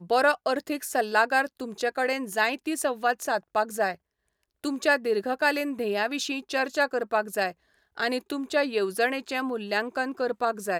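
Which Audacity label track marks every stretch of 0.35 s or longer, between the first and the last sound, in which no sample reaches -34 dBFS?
3.940000	4.640000	silence
7.510000	7.980000	silence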